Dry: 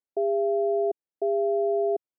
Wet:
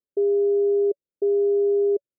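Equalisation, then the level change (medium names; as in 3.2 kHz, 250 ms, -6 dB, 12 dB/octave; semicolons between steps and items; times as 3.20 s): rippled Chebyshev low-pass 580 Hz, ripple 3 dB; +6.0 dB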